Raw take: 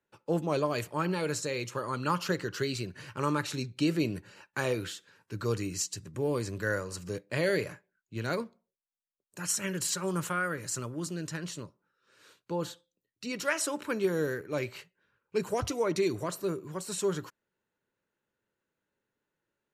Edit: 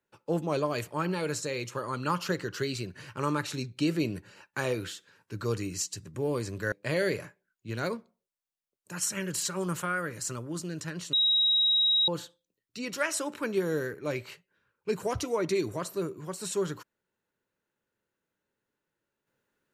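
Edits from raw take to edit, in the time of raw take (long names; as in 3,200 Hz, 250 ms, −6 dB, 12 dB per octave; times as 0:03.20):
0:06.72–0:07.19: remove
0:11.60–0:12.55: beep over 3,820 Hz −21 dBFS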